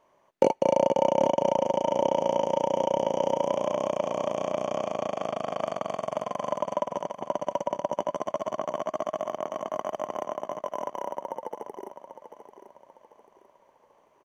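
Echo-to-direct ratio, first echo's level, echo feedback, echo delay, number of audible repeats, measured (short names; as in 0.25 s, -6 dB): -10.5 dB, -11.0 dB, 37%, 0.791 s, 3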